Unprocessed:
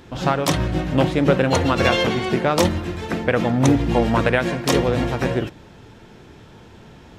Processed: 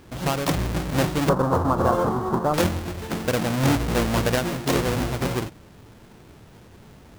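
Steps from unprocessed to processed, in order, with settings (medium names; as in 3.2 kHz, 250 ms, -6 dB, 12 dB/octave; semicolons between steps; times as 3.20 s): square wave that keeps the level; 1.29–2.54 s: resonant high shelf 1.6 kHz -12.5 dB, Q 3; trim -8.5 dB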